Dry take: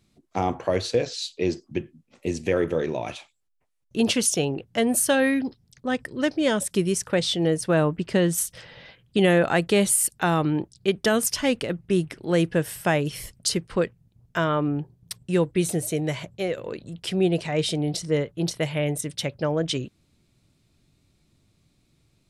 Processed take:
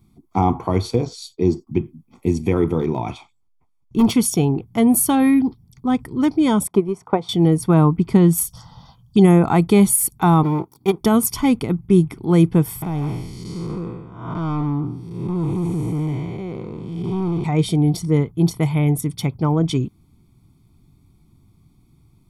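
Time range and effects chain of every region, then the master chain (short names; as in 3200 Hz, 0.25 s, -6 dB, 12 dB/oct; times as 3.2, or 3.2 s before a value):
0.96–1.67 expander -48 dBFS + bell 2400 Hz -8 dB 0.99 oct
2.79–4.11 LPF 7400 Hz + hard clip -18.5 dBFS
6.67–7.29 band-pass 720 Hz, Q 1.6 + transient shaper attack +11 dB, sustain +3 dB
8.49–9.46 bell 5600 Hz +11 dB 0.94 oct + envelope phaser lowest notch 340 Hz, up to 4300 Hz, full sweep at -14 dBFS
10.43–11.01 minimum comb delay 2.1 ms + HPF 180 Hz
12.82–17.44 time blur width 0.332 s + hard clip -27.5 dBFS + air absorption 75 m
whole clip: band shelf 3400 Hz -11 dB 3 oct; comb 0.9 ms, depth 84%; gain +6.5 dB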